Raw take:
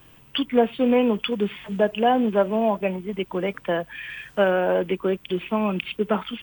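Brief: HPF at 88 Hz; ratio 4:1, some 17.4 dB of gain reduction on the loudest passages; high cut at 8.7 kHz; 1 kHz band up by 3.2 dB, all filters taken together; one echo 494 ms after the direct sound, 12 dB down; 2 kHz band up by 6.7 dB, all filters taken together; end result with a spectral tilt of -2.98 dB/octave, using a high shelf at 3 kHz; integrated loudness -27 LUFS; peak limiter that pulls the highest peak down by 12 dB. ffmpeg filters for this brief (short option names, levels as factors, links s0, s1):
-af "highpass=88,lowpass=8700,equalizer=f=1000:t=o:g=3,equalizer=f=2000:t=o:g=6,highshelf=f=3000:g=5.5,acompressor=threshold=0.02:ratio=4,alimiter=level_in=1.41:limit=0.0631:level=0:latency=1,volume=0.708,aecho=1:1:494:0.251,volume=3.16"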